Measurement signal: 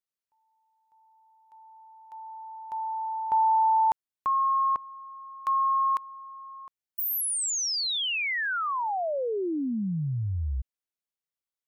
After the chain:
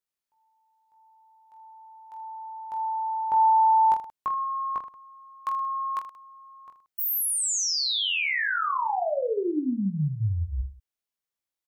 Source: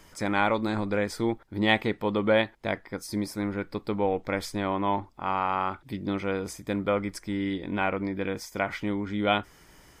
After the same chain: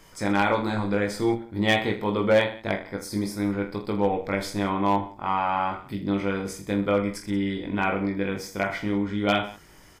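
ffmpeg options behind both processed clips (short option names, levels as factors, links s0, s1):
-af "aecho=1:1:20|46|79.8|123.7|180.9:0.631|0.398|0.251|0.158|0.1,asoftclip=type=hard:threshold=0.224"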